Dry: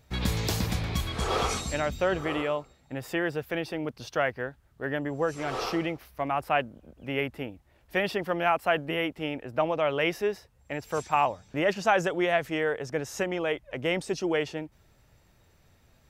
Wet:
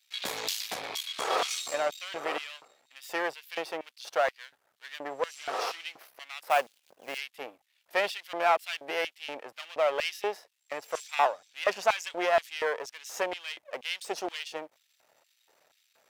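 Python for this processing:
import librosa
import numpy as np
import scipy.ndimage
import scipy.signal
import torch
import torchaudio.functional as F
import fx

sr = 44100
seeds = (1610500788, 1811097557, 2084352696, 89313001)

y = np.where(x < 0.0, 10.0 ** (-12.0 / 20.0) * x, x)
y = fx.quant_float(y, sr, bits=2, at=(6.48, 7.18))
y = fx.filter_lfo_highpass(y, sr, shape='square', hz=2.1, low_hz=590.0, high_hz=3100.0, q=1.4)
y = F.gain(torch.from_numpy(y), 2.5).numpy()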